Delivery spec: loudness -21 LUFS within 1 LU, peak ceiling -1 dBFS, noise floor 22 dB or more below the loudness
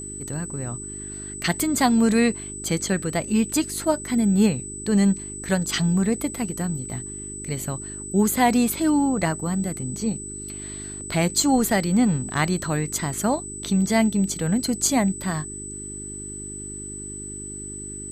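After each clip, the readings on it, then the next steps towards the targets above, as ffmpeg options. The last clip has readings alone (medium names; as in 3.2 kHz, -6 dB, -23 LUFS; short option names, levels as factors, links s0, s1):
hum 50 Hz; highest harmonic 400 Hz; hum level -38 dBFS; steady tone 8 kHz; tone level -34 dBFS; loudness -24.0 LUFS; peak level -7.0 dBFS; loudness target -21.0 LUFS
-> -af "bandreject=f=50:t=h:w=4,bandreject=f=100:t=h:w=4,bandreject=f=150:t=h:w=4,bandreject=f=200:t=h:w=4,bandreject=f=250:t=h:w=4,bandreject=f=300:t=h:w=4,bandreject=f=350:t=h:w=4,bandreject=f=400:t=h:w=4"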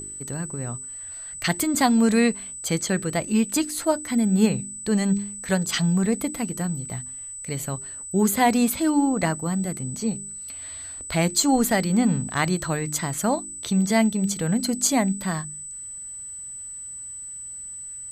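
hum not found; steady tone 8 kHz; tone level -34 dBFS
-> -af "bandreject=f=8000:w=30"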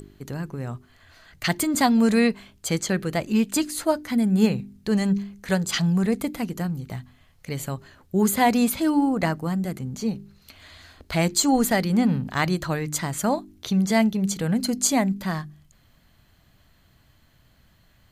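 steady tone not found; loudness -23.5 LUFS; peak level -6.5 dBFS; loudness target -21.0 LUFS
-> -af "volume=1.33"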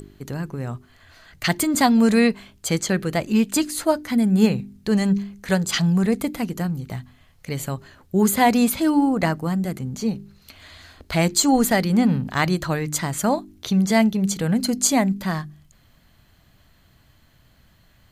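loudness -21.0 LUFS; peak level -4.0 dBFS; noise floor -57 dBFS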